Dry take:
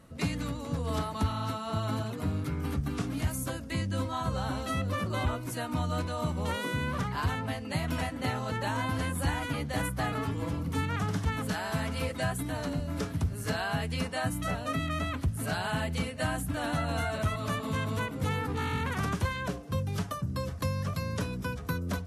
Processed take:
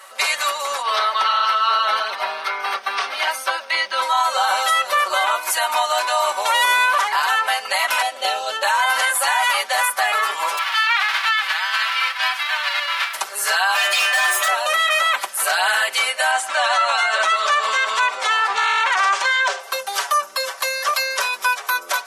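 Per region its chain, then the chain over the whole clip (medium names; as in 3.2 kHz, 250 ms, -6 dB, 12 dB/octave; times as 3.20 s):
0.81–4.01 s: crackle 360 per s -51 dBFS + Savitzky-Golay filter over 15 samples
8.02–8.63 s: low-pass 3.9 kHz 6 dB/octave + high-order bell 1.4 kHz -11.5 dB
10.57–13.13 s: formants flattened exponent 0.3 + high-pass 1.3 kHz + distance through air 370 m
13.74–14.48 s: comb filter that takes the minimum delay 1.6 ms + inharmonic resonator 89 Hz, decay 0.71 s, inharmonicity 0.008 + overdrive pedal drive 31 dB, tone 5.6 kHz, clips at -22.5 dBFS
16.31–19.60 s: low-pass 7.7 kHz 24 dB/octave + delay 118 ms -19.5 dB
whole clip: inverse Chebyshev high-pass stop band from 160 Hz, stop band 70 dB; comb 5.2 ms, depth 89%; loudness maximiser +27.5 dB; trim -8.5 dB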